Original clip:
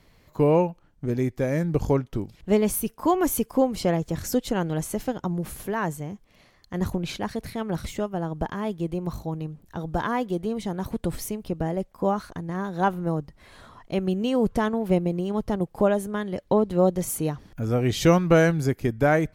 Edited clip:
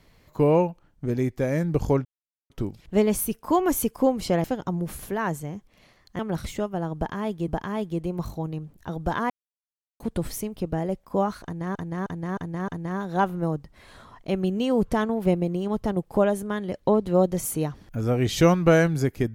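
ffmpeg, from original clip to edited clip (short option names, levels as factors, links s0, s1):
-filter_complex "[0:a]asplit=11[s0][s1][s2][s3][s4][s5][s6][s7][s8][s9][s10];[s0]atrim=end=2.05,asetpts=PTS-STARTPTS,afade=t=out:st=2.046:d=0.004:c=hsin,apad=pad_dur=0.45[s11];[s1]atrim=start=2.05:end=3.992,asetpts=PTS-STARTPTS,afade=t=in:d=0.004:c=hsin[s12];[s2]atrim=start=5.008:end=6.762[s13];[s3]atrim=start=7.588:end=8.882[s14];[s4]atrim=start=8.358:end=10.18,asetpts=PTS-STARTPTS,afade=t=out:st=1.818:d=0.004:c=hsin[s15];[s5]atrim=start=10.18:end=10.88,asetpts=PTS-STARTPTS,volume=0[s16];[s6]atrim=start=10.88:end=12.632,asetpts=PTS-STARTPTS,afade=t=in:d=0.004:c=hsin[s17];[s7]atrim=start=12.318:end=12.632[s18];[s8]atrim=start=12.318:end=12.632[s19];[s9]atrim=start=12.318:end=12.632[s20];[s10]atrim=start=12.318[s21];[s11][s12]concat=n=2:v=0:a=1[s22];[s22][s13]acrossfade=d=0.004:c1=hsin:c2=hsin[s23];[s23][s14]acrossfade=d=0.004:c1=hsin:c2=hsin[s24];[s15][s16][s17]concat=n=3:v=0:a=1[s25];[s24][s25]acrossfade=d=0.004:c1=hsin:c2=hsin[s26];[s26][s18]acrossfade=d=0.004:c1=hsin:c2=hsin[s27];[s27][s19]acrossfade=d=0.004:c1=hsin:c2=hsin[s28];[s28][s20]acrossfade=d=0.004:c1=hsin:c2=hsin[s29];[s29][s21]acrossfade=d=0.004:c1=hsin:c2=hsin"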